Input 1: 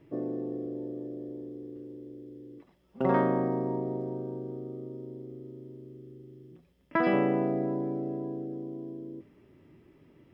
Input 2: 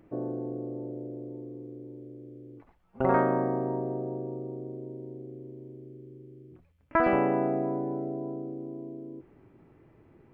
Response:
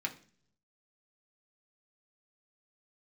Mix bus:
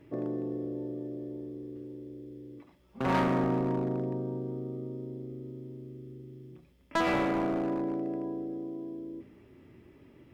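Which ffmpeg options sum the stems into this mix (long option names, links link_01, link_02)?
-filter_complex "[0:a]equalizer=frequency=65:width_type=o:width=1.4:gain=8,bandreject=frequency=50:width_type=h:width=6,bandreject=frequency=100:width_type=h:width=6,bandreject=frequency=150:width_type=h:width=6,bandreject=frequency=200:width_type=h:width=6,bandreject=frequency=250:width_type=h:width=6,bandreject=frequency=300:width_type=h:width=6,volume=25.5dB,asoftclip=hard,volume=-25.5dB,volume=1dB,asplit=2[link_01][link_02];[link_02]volume=-10.5dB[link_03];[1:a]highpass=frequency=240:width=0.5412,highpass=frequency=240:width=1.3066,volume=-10.5dB[link_04];[2:a]atrim=start_sample=2205[link_05];[link_03][link_05]afir=irnorm=-1:irlink=0[link_06];[link_01][link_04][link_06]amix=inputs=3:normalize=0"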